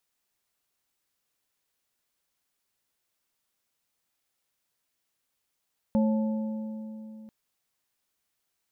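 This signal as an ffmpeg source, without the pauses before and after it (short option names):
-f lavfi -i "aevalsrc='0.1*pow(10,-3*t/3.38)*sin(2*PI*218*t)+0.0398*pow(10,-3*t/2.568)*sin(2*PI*545*t)+0.0158*pow(10,-3*t/2.23)*sin(2*PI*872*t)':d=1.34:s=44100"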